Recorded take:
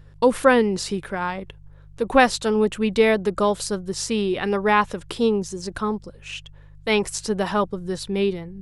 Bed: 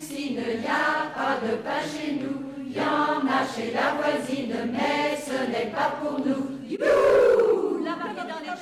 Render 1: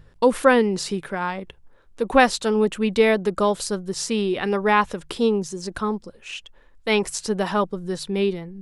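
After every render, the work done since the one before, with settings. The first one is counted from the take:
hum removal 50 Hz, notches 3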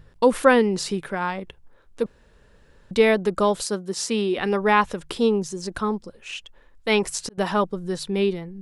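0:02.06–0:02.91: fill with room tone
0:03.62–0:04.38: high-pass filter 180 Hz 24 dB per octave
0:06.90–0:07.38: volume swells 646 ms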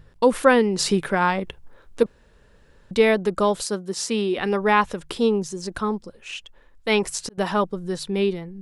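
0:00.79–0:02.03: clip gain +6 dB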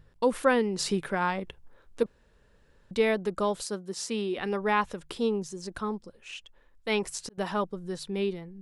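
level −7.5 dB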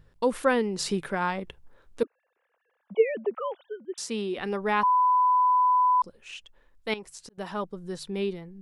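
0:02.03–0:03.98: three sine waves on the formant tracks
0:04.83–0:06.02: beep over 1,000 Hz −18 dBFS
0:06.94–0:07.96: fade in, from −13.5 dB

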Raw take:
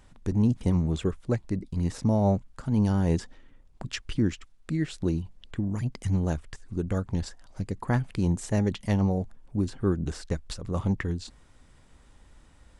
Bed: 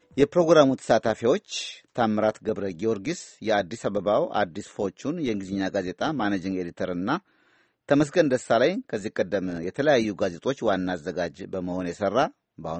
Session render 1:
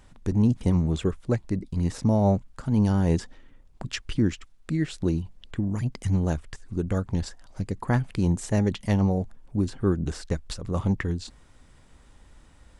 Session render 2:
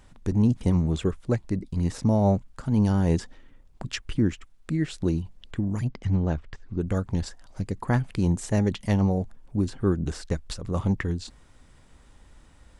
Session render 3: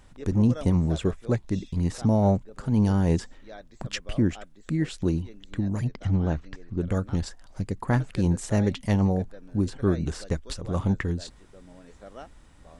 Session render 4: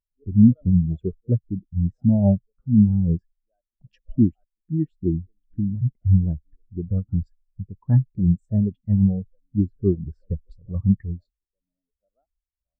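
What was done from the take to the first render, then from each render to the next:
level +2 dB
0:03.97–0:04.84: dynamic equaliser 4,800 Hz, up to −6 dB, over −55 dBFS, Q 0.97; 0:05.88–0:06.81: high-frequency loss of the air 170 metres
mix in bed −21 dB
in parallel at +2.5 dB: speech leveller within 3 dB 0.5 s; on the sum: every bin expanded away from the loudest bin 2.5 to 1

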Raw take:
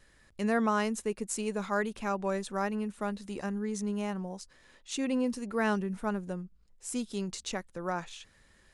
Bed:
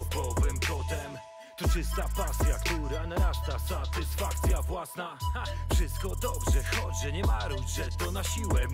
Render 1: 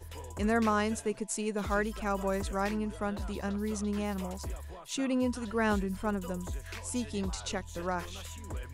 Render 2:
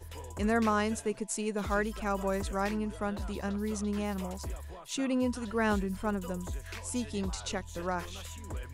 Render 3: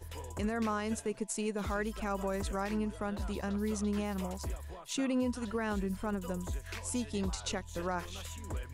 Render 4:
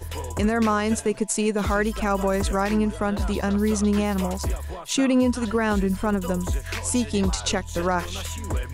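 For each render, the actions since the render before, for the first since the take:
mix in bed −12.5 dB
0:05.48–0:06.36: floating-point word with a short mantissa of 6 bits
transient designer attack +1 dB, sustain −3 dB; brickwall limiter −24.5 dBFS, peak gain reduction 9 dB
level +12 dB

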